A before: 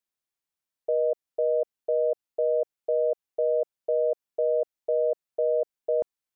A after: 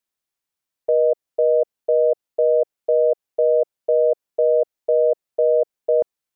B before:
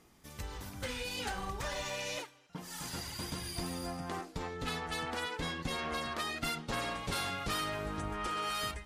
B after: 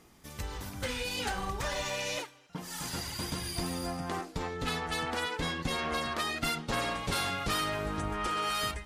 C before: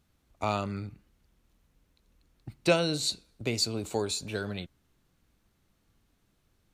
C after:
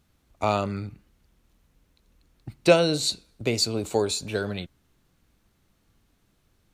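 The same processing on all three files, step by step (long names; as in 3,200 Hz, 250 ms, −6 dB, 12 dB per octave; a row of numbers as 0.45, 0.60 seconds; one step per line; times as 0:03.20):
dynamic equaliser 520 Hz, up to +4 dB, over −38 dBFS, Q 1.2
level +4 dB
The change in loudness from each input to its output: +7.5, +4.0, +5.5 LU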